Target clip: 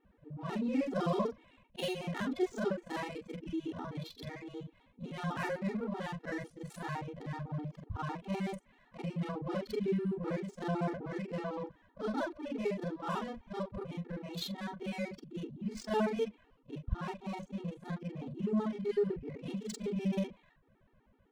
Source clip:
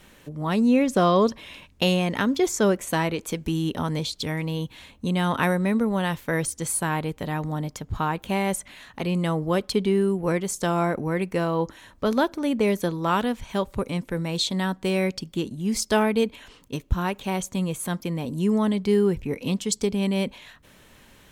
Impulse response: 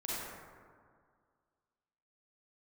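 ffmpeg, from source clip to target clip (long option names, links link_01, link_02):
-af "afftfilt=real='re':imag='-im':win_size=4096:overlap=0.75,adynamicsmooth=sensitivity=6:basefreq=1100,afftfilt=real='re*gt(sin(2*PI*7.9*pts/sr)*(1-2*mod(floor(b*sr/1024/240),2)),0)':imag='im*gt(sin(2*PI*7.9*pts/sr)*(1-2*mod(floor(b*sr/1024/240),2)),0)':win_size=1024:overlap=0.75,volume=-5dB"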